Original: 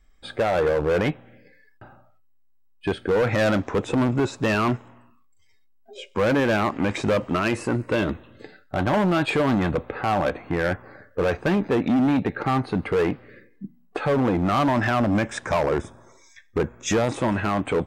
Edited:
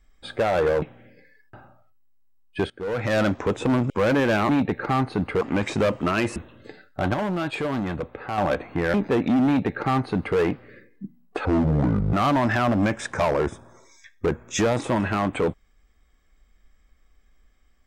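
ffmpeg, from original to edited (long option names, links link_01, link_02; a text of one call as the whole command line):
ffmpeg -i in.wav -filter_complex "[0:a]asplit=12[link_01][link_02][link_03][link_04][link_05][link_06][link_07][link_08][link_09][link_10][link_11][link_12];[link_01]atrim=end=0.822[link_13];[link_02]atrim=start=1.098:end=2.98,asetpts=PTS-STARTPTS,afade=type=out:start_time=1.878:duration=0.004:curve=hsin:silence=0.105925[link_14];[link_03]atrim=start=2.98:end=4.182,asetpts=PTS-STARTPTS,afade=type=in:duration=0.54:silence=0.105925[link_15];[link_04]atrim=start=6.098:end=6.692[link_16];[link_05]atrim=start=12.058:end=12.982[link_17];[link_06]atrim=start=6.688:end=7.642[link_18];[link_07]atrim=start=8.108:end=8.892[link_19];[link_08]atrim=start=8.888:end=10.132,asetpts=PTS-STARTPTS,volume=-5.5dB[link_20];[link_09]atrim=start=10.128:end=10.692[link_21];[link_10]atrim=start=11.538:end=14.054[link_22];[link_11]atrim=start=14.05:end=14.45,asetpts=PTS-STARTPTS,asetrate=26019,aresample=44100,atrim=end_sample=29898,asetpts=PTS-STARTPTS[link_23];[link_12]atrim=start=14.446[link_24];[link_14][link_15]concat=n=2:v=0:a=1[link_25];[link_13][link_25]acrossfade=duration=0.004:curve1=hsin:curve2=hsin[link_26];[link_26][link_16]acrossfade=duration=0.004:curve1=hsin:curve2=hsin[link_27];[link_27][link_17]acrossfade=duration=0.004:curve1=hsin:curve2=hsin[link_28];[link_28][link_18]acrossfade=duration=0.004:curve1=hsin:curve2=hsin[link_29];[link_29][link_19]acrossfade=duration=0.004:curve1=hsin:curve2=hsin[link_30];[link_30][link_20]acrossfade=duration=0.004:curve1=hsin:curve2=hsin[link_31];[link_31][link_21]acrossfade=duration=0.004:curve1=hsin:curve2=hsin[link_32];[link_32][link_22]acrossfade=duration=0.004:curve1=hsin:curve2=hsin[link_33];[link_33][link_23]acrossfade=duration=0.004:curve1=hsin:curve2=hsin[link_34];[link_34][link_24]acrossfade=duration=0.004:curve1=hsin:curve2=hsin" out.wav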